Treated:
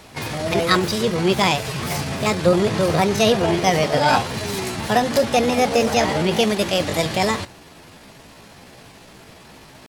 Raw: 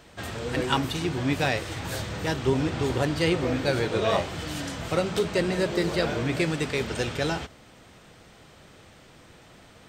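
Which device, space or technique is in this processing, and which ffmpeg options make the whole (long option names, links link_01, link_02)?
chipmunk voice: -af "asetrate=58866,aresample=44100,atempo=0.749154,volume=7.5dB"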